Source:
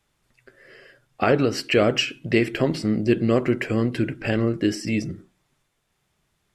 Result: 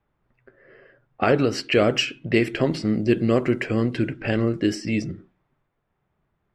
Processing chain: low-pass opened by the level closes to 1400 Hz, open at -16.5 dBFS

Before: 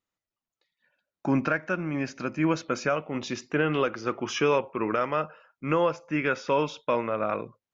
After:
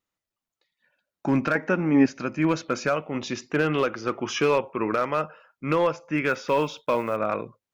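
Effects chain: 6.28–7.18 block floating point 7-bit; hard clip -16 dBFS, distortion -23 dB; 1.55–2.06 small resonant body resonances 260/430/830/1900 Hz, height 13 dB; gain +2 dB

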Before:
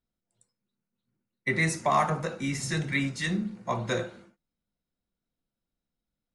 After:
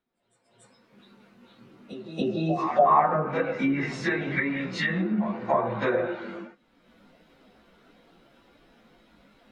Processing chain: recorder AGC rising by 44 dB/s; spectral repair 1.06–1.89, 810–2500 Hz before; three-band isolator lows -16 dB, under 230 Hz, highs -21 dB, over 3600 Hz; plain phase-vocoder stretch 1.5×; reverse echo 0.286 s -12.5 dB; treble ducked by the level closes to 1200 Hz, closed at -27.5 dBFS; gain +8.5 dB

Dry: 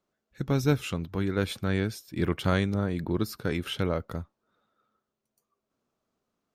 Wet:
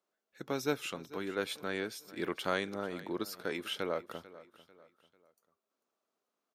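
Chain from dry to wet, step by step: HPF 370 Hz 12 dB/oct; on a send: feedback echo 0.444 s, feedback 40%, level -18 dB; on the sum: gain -3.5 dB

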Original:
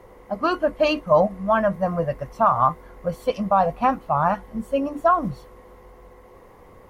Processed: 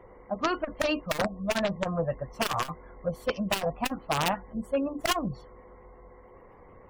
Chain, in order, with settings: one-sided fold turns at -15 dBFS; 1.05–1.48 LPF 1800 Hz 6 dB/oct; wrapped overs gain 12.5 dB; spectral gate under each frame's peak -30 dB strong; core saturation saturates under 300 Hz; gain -4 dB

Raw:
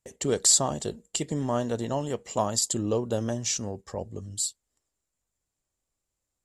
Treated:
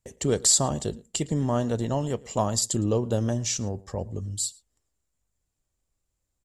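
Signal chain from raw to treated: low shelf 160 Hz +9.5 dB; outdoor echo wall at 19 m, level -23 dB

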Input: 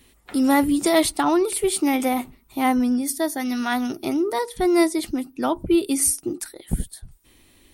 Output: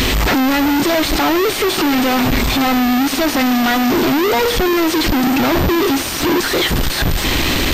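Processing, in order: infinite clipping; diffused feedback echo 0.474 s, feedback 45%, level -13.5 dB; in parallel at +2.5 dB: limiter -27.5 dBFS, peak gain reduction 11 dB; on the sum: companded quantiser 4-bit; upward compressor, threshold -29 dBFS; pulse-width modulation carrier 12000 Hz; gain +5 dB

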